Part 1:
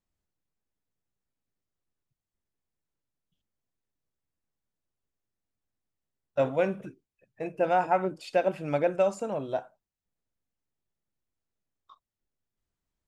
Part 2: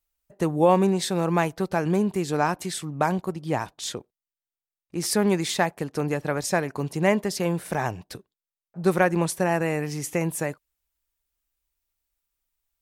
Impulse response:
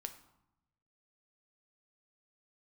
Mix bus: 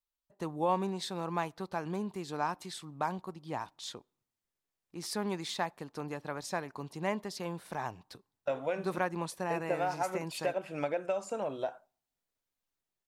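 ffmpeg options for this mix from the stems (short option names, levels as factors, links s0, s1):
-filter_complex "[0:a]lowshelf=f=270:g=-11.5,acompressor=threshold=0.0282:ratio=5,adelay=2100,volume=1.12,asplit=2[s0][s1];[s1]volume=0.0631[s2];[1:a]equalizer=f=250:t=o:w=1:g=3,equalizer=f=1000:t=o:w=1:g=9,equalizer=f=4000:t=o:w=1:g=8,volume=0.15,asplit=2[s3][s4];[s4]volume=0.106[s5];[2:a]atrim=start_sample=2205[s6];[s2][s5]amix=inputs=2:normalize=0[s7];[s7][s6]afir=irnorm=-1:irlink=0[s8];[s0][s3][s8]amix=inputs=3:normalize=0"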